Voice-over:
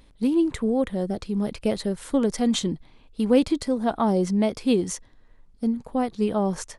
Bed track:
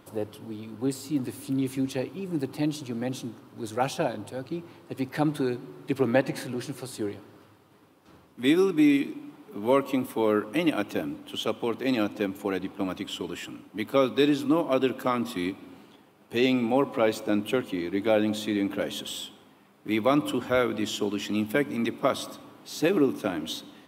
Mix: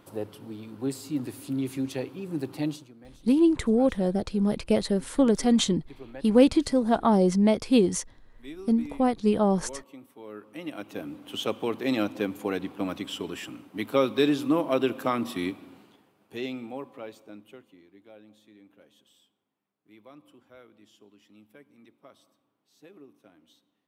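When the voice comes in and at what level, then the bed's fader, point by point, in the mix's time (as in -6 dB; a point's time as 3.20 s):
3.05 s, +1.0 dB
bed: 2.71 s -2 dB
2.94 s -20 dB
10.23 s -20 dB
11.32 s -0.5 dB
15.51 s -0.5 dB
18.08 s -28 dB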